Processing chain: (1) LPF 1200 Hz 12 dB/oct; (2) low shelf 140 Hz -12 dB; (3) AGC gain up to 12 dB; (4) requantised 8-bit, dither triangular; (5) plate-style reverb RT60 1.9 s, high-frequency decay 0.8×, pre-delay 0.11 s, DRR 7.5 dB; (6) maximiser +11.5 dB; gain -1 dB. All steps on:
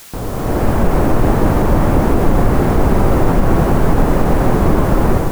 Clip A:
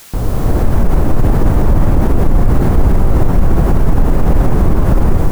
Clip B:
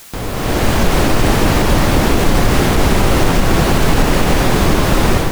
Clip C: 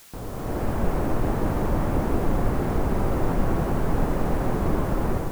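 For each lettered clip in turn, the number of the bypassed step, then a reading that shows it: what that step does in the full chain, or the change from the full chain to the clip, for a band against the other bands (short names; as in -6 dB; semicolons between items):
2, 125 Hz band +6.0 dB; 1, 4 kHz band +14.0 dB; 6, crest factor change +4.5 dB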